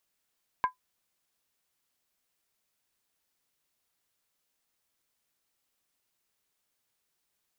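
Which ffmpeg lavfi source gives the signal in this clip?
-f lavfi -i "aevalsrc='0.126*pow(10,-3*t/0.12)*sin(2*PI*1010*t)+0.0398*pow(10,-3*t/0.095)*sin(2*PI*1609.9*t)+0.0126*pow(10,-3*t/0.082)*sin(2*PI*2157.4*t)+0.00398*pow(10,-3*t/0.079)*sin(2*PI*2319*t)+0.00126*pow(10,-3*t/0.074)*sin(2*PI*2679.5*t)':d=0.63:s=44100"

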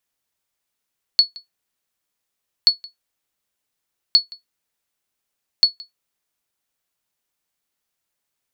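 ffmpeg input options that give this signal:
-f lavfi -i "aevalsrc='0.668*(sin(2*PI*4400*mod(t,1.48))*exp(-6.91*mod(t,1.48)/0.14)+0.0631*sin(2*PI*4400*max(mod(t,1.48)-0.17,0))*exp(-6.91*max(mod(t,1.48)-0.17,0)/0.14))':d=5.92:s=44100"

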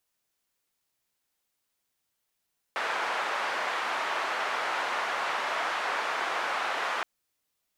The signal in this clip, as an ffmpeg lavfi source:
-f lavfi -i "anoisesrc=c=white:d=4.27:r=44100:seed=1,highpass=f=810,lowpass=f=1300,volume=-10.3dB"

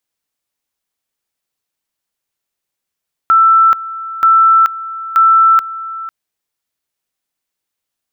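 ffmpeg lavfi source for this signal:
-f lavfi -i "aevalsrc='pow(10,(-5-16.5*gte(mod(t,0.93),0.43))/20)*sin(2*PI*1330*t)':d=2.79:s=44100"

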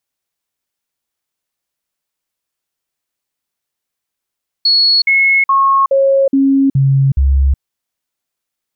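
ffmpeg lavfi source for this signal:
-f lavfi -i "aevalsrc='0.422*clip(min(mod(t,0.42),0.37-mod(t,0.42))/0.005,0,1)*sin(2*PI*4360*pow(2,-floor(t/0.42)/1)*mod(t,0.42))':d=2.94:s=44100"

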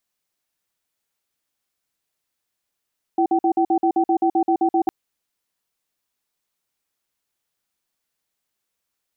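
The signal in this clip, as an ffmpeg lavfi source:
-f lavfi -i "aevalsrc='0.133*(sin(2*PI*335*t)+sin(2*PI*766*t))*clip(min(mod(t,0.13),0.08-mod(t,0.13))/0.005,0,1)':d=1.71:s=44100"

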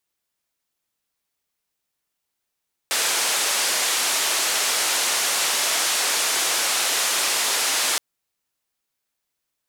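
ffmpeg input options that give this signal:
-f lavfi -i "anoisesrc=c=white:d=5.07:r=44100:seed=1,highpass=f=460,lowpass=f=9200,volume=-13.3dB"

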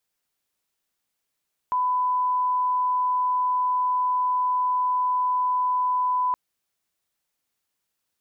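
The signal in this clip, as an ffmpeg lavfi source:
-f lavfi -i "sine=f=1000:d=4.62:r=44100,volume=-1.94dB"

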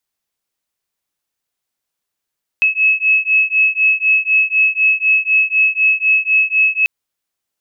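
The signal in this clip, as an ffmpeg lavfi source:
-f lavfi -i "aevalsrc='0.2*(sin(2*PI*2580*t)+sin(2*PI*2584*t))':d=4.24:s=44100"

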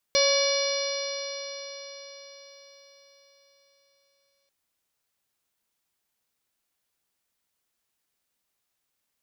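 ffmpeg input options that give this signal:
-f lavfi -i "aevalsrc='0.0841*pow(10,-3*t/4.82)*sin(2*PI*554.97*t)+0.0211*pow(10,-3*t/4.82)*sin(2*PI*1115.73*t)+0.0141*pow(10,-3*t/4.82)*sin(2*PI*1687.97*t)+0.0398*pow(10,-3*t/4.82)*sin(2*PI*2277.2*t)+0.0178*pow(10,-3*t/4.82)*sin(2*PI*2888.65*t)+0.0335*pow(10,-3*t/4.82)*sin(2*PI*3527.2*t)+0.0562*pow(10,-3*t/4.82)*sin(2*PI*4197.39*t)+0.0422*pow(10,-3*t/4.82)*sin(2*PI*4903.32*t)+0.0501*pow(10,-3*t/4.82)*sin(2*PI*5648.72*t)':d=4.34:s=44100"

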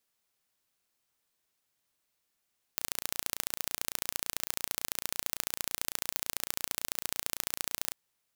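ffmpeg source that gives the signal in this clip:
-f lavfi -i "aevalsrc='0.708*eq(mod(n,1521),0)*(0.5+0.5*eq(mod(n,3042),0))':d=5.16:s=44100"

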